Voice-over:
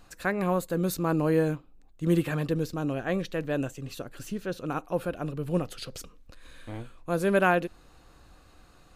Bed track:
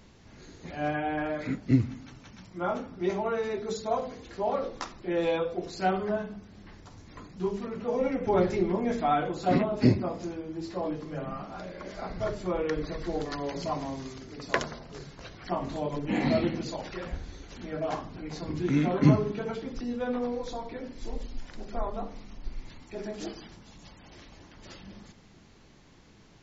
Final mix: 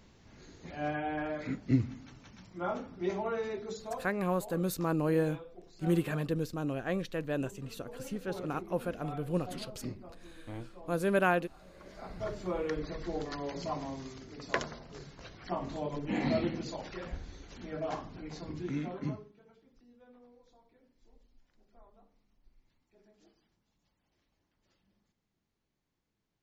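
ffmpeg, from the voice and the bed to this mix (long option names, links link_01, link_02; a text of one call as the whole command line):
ffmpeg -i stem1.wav -i stem2.wav -filter_complex "[0:a]adelay=3800,volume=-4.5dB[link_01];[1:a]volume=10dB,afade=type=out:start_time=3.43:duration=0.83:silence=0.188365,afade=type=in:start_time=11.6:duration=0.84:silence=0.188365,afade=type=out:start_time=18.2:duration=1.1:silence=0.0668344[link_02];[link_01][link_02]amix=inputs=2:normalize=0" out.wav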